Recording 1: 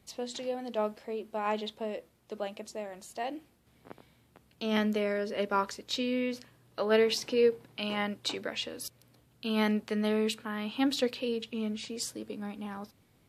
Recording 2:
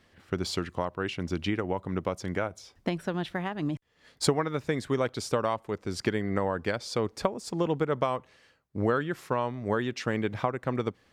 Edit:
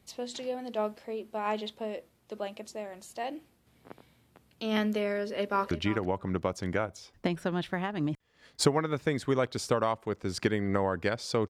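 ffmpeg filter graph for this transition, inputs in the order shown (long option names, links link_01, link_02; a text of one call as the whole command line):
ffmpeg -i cue0.wav -i cue1.wav -filter_complex "[0:a]apad=whole_dur=11.49,atrim=end=11.49,atrim=end=5.712[link_01];[1:a]atrim=start=1.328:end=7.11[link_02];[link_01][link_02]acrossfade=duration=0.004:curve1=hsin:curve2=hsin,asplit=2[link_03][link_04];[link_04]afade=type=in:start_time=5.2:duration=0.01,afade=type=out:start_time=5.71:duration=0.01,aecho=0:1:340|680:0.199526|0.0299289[link_05];[link_03][link_05]amix=inputs=2:normalize=0" out.wav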